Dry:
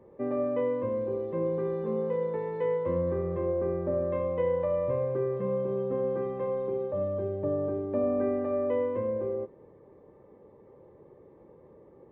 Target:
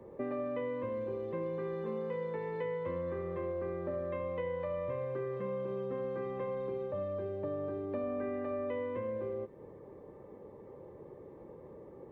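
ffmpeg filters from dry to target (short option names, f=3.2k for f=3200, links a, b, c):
-filter_complex "[0:a]acrossover=split=230|1400[a][b][c];[a]acompressor=threshold=-51dB:ratio=4[d];[b]acompressor=threshold=-42dB:ratio=4[e];[c]acompressor=threshold=-51dB:ratio=4[f];[d][e][f]amix=inputs=3:normalize=0,volume=3.5dB"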